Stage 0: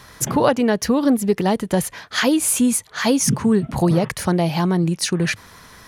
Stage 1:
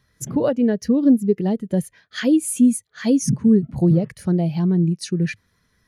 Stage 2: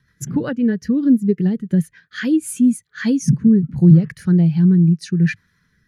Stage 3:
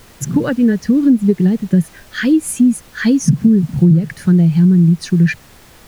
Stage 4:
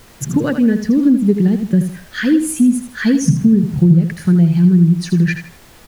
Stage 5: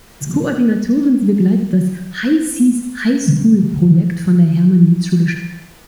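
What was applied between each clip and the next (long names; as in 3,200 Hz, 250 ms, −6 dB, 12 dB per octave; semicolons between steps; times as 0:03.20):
parametric band 950 Hz −7.5 dB 1 octave; every bin expanded away from the loudest bin 1.5 to 1
graphic EQ with 15 bands 160 Hz +8 dB, 630 Hz −11 dB, 1,600 Hz +9 dB, 10,000 Hz −4 dB; rotating-speaker cabinet horn 7.5 Hz, later 0.8 Hz, at 0:01.95; level +1 dB
background noise pink −49 dBFS; downward compressor 6 to 1, threshold −13 dBFS, peak gain reduction 8.5 dB; level +6 dB
repeating echo 80 ms, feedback 30%, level −9 dB; level −1 dB
reverb whose tail is shaped and stops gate 360 ms falling, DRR 6 dB; level −1 dB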